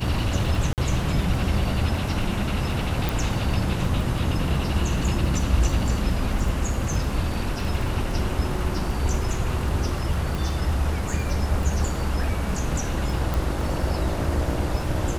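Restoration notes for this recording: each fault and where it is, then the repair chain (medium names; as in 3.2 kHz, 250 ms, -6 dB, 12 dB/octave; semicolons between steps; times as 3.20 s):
crackle 24 per s -30 dBFS
0.73–0.78 s: dropout 48 ms
3.09 s: pop
10.35 s: pop
13.34 s: pop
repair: de-click; interpolate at 0.73 s, 48 ms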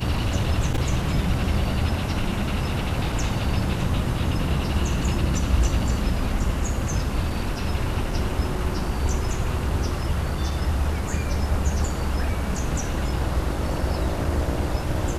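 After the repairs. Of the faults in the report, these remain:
3.09 s: pop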